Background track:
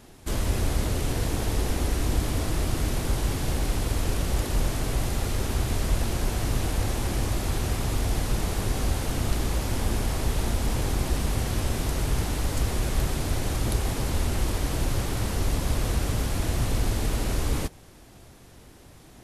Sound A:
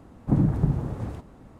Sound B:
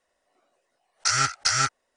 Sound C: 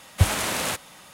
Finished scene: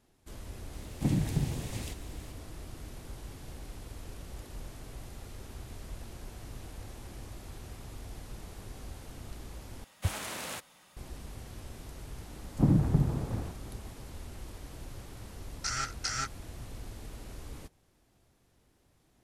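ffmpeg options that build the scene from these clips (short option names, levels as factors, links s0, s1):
-filter_complex "[1:a]asplit=2[s0][s1];[0:a]volume=0.119[s2];[s0]aexciter=amount=7.8:drive=7.2:freq=2000[s3];[s2]asplit=2[s4][s5];[s4]atrim=end=9.844[s6];[3:a]atrim=end=1.13,asetpts=PTS-STARTPTS,volume=0.237[s7];[s5]atrim=start=10.966[s8];[s3]atrim=end=1.59,asetpts=PTS-STARTPTS,volume=0.422,afade=t=in:d=0.004:c=hsin,afade=t=out:st=1.586:d=0.004:c=hsin,adelay=730[s9];[s1]atrim=end=1.59,asetpts=PTS-STARTPTS,volume=0.708,afade=t=in:d=0.004:c=hsin,afade=t=out:st=1.586:d=0.004:c=hsin,adelay=12310[s10];[2:a]atrim=end=1.96,asetpts=PTS-STARTPTS,volume=0.266,afade=t=in:d=0.004:c=hsin,afade=t=out:st=1.956:d=0.004:c=hsin,adelay=14590[s11];[s6][s7]acrossfade=d=0.004:c1=hsin:c2=hsin[s12];[s12][s8]acrossfade=d=0.004:c1=hsin:c2=hsin[s13];[s13][s9][s10][s11]amix=inputs=4:normalize=0"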